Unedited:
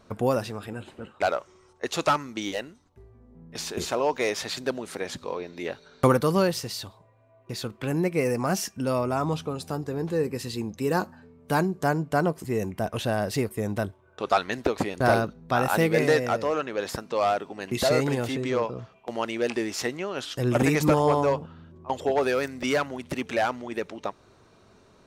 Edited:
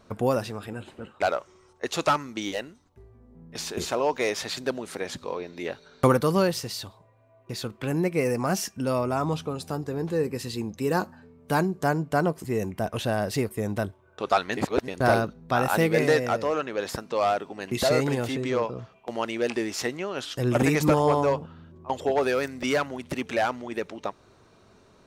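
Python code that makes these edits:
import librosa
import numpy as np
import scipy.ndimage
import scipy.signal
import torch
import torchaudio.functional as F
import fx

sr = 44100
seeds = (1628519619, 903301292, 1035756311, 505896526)

y = fx.edit(x, sr, fx.reverse_span(start_s=14.57, length_s=0.31), tone=tone)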